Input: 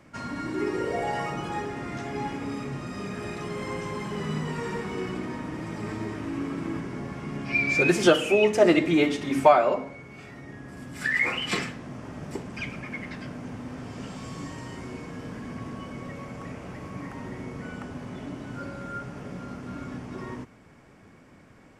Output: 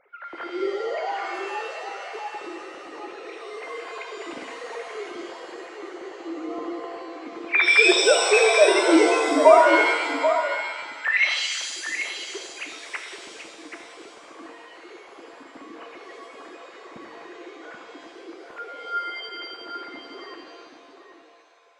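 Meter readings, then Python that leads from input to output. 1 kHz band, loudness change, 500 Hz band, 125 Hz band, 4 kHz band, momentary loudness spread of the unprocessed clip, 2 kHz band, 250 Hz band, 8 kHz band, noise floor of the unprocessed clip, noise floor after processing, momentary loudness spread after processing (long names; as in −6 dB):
+4.5 dB, +7.5 dB, +4.5 dB, below −30 dB, +8.0 dB, 18 LU, +6.5 dB, −1.5 dB, +10.0 dB, −53 dBFS, −48 dBFS, 23 LU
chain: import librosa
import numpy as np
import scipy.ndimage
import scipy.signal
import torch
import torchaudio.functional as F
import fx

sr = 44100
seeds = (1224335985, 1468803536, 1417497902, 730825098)

y = fx.sine_speech(x, sr)
y = y + 10.0 ** (-8.5 / 20.0) * np.pad(y, (int(783 * sr / 1000.0), 0))[:len(y)]
y = fx.rev_shimmer(y, sr, seeds[0], rt60_s=1.3, semitones=7, shimmer_db=-2, drr_db=5.5)
y = F.gain(torch.from_numpy(y), 1.0).numpy()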